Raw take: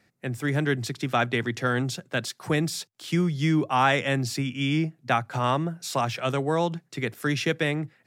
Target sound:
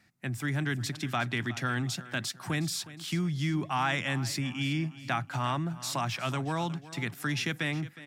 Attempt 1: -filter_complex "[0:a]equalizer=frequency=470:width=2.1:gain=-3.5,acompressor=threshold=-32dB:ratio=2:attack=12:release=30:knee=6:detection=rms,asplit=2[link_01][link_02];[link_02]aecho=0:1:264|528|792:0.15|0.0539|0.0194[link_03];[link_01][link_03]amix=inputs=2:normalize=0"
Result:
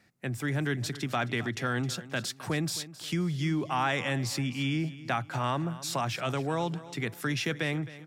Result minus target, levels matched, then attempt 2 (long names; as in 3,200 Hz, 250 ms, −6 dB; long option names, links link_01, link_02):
echo 99 ms early; 500 Hz band +4.0 dB
-filter_complex "[0:a]equalizer=frequency=470:width=2.1:gain=-13,acompressor=threshold=-32dB:ratio=2:attack=12:release=30:knee=6:detection=rms,asplit=2[link_01][link_02];[link_02]aecho=0:1:363|726|1089:0.15|0.0539|0.0194[link_03];[link_01][link_03]amix=inputs=2:normalize=0"